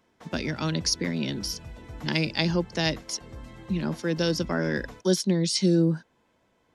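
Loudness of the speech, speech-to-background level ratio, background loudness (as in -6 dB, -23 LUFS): -27.0 LUFS, 18.0 dB, -45.0 LUFS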